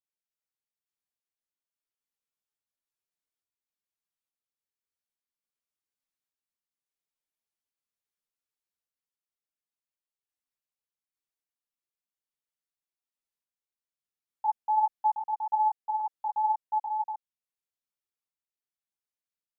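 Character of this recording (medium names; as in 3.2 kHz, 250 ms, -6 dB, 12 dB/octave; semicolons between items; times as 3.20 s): random-step tremolo; a shimmering, thickened sound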